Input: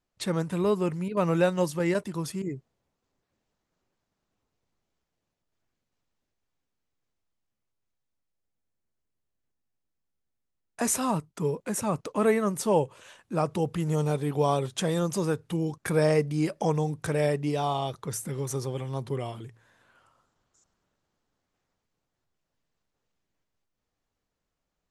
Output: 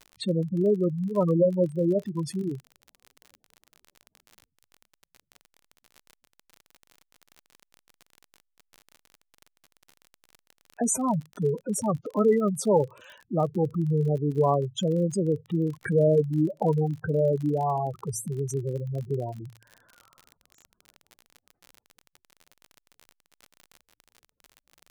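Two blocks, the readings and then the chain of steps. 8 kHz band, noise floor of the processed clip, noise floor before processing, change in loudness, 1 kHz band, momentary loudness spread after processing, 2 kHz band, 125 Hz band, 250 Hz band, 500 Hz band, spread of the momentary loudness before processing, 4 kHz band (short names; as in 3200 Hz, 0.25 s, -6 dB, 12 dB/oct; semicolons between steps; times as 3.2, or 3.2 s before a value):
0.0 dB, -81 dBFS, -83 dBFS, +2.0 dB, -0.5 dB, 9 LU, -8.0 dB, +2.5 dB, +2.5 dB, +2.5 dB, 9 LU, -3.5 dB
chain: spectral gate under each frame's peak -10 dB strong; crackle 38/s -38 dBFS; gain +3 dB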